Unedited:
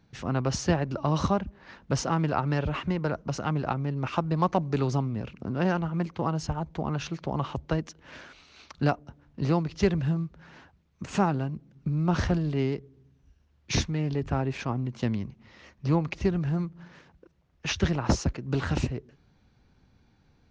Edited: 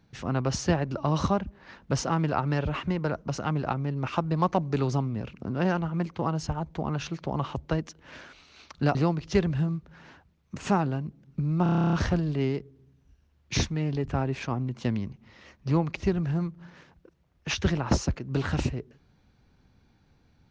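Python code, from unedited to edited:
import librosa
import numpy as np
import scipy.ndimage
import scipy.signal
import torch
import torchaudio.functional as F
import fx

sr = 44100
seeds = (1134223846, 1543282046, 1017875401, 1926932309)

y = fx.edit(x, sr, fx.cut(start_s=8.95, length_s=0.48),
    fx.stutter(start_s=12.11, slice_s=0.03, count=11), tone=tone)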